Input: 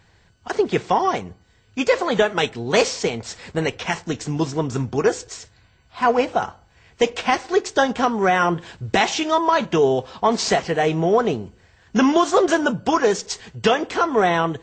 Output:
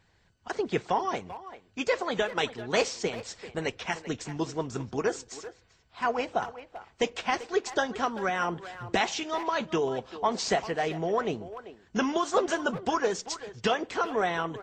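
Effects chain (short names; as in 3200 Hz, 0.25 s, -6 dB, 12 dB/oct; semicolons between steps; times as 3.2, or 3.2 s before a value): harmonic-percussive split harmonic -6 dB; speakerphone echo 0.39 s, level -13 dB; gain -7 dB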